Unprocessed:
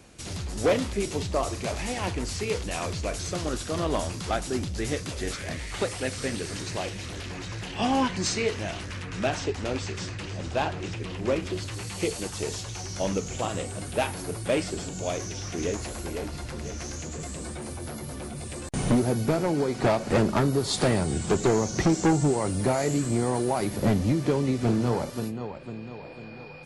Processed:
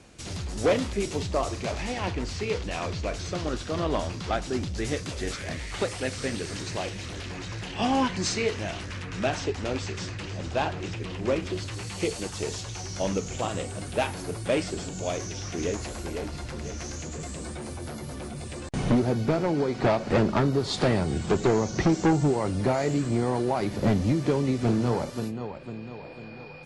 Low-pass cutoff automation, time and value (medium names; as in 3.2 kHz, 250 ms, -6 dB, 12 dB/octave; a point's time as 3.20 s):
1.24 s 8.9 kHz
2.06 s 5.2 kHz
4.35 s 5.2 kHz
4.88 s 8.7 kHz
18.32 s 8.7 kHz
18.86 s 5.2 kHz
23.58 s 5.2 kHz
24.13 s 8.9 kHz